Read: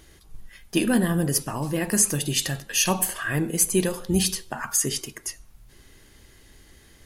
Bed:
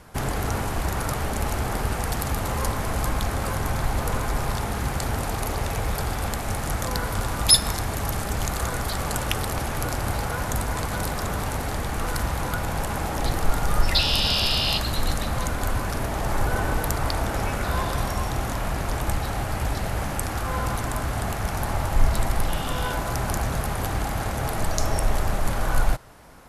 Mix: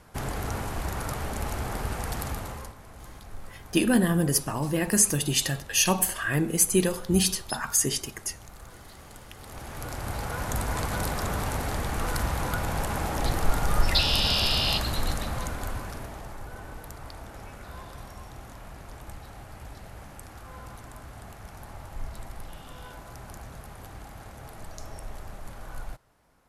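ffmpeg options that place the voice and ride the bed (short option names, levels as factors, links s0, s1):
-filter_complex "[0:a]adelay=3000,volume=0.944[s0];[1:a]volume=4.73,afade=t=out:st=2.24:d=0.5:silence=0.16788,afade=t=in:st=9.35:d=1.43:silence=0.112202,afade=t=out:st=14.7:d=1.67:silence=0.177828[s1];[s0][s1]amix=inputs=2:normalize=0"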